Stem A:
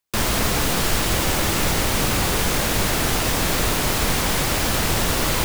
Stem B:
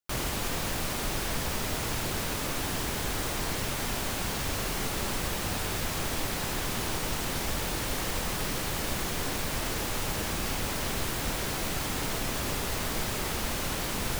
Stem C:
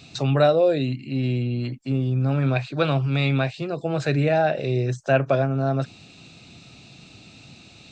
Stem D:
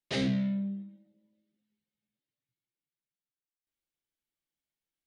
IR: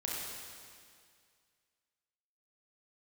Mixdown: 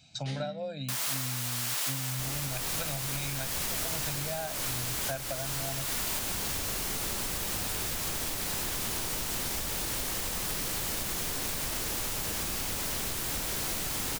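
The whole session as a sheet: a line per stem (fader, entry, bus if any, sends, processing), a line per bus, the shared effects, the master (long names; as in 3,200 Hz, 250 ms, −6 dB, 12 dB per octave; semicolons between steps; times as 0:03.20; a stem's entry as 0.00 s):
−9.5 dB, 0.75 s, bus A, no send, high-pass filter 780 Hz 12 dB per octave
+1.0 dB, 2.10 s, bus A, no send, no processing
−5.5 dB, 0.00 s, bus A, no send, comb filter 1.3 ms, depth 96%; expander for the loud parts 1.5 to 1, over −35 dBFS
−8.5 dB, 0.15 s, no bus, no send, automatic ducking −10 dB, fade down 0.75 s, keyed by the third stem
bus A: 0.0 dB, downward compressor 10 to 1, threshold −33 dBFS, peak gain reduction 18.5 dB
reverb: not used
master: high-shelf EQ 4,000 Hz +9.5 dB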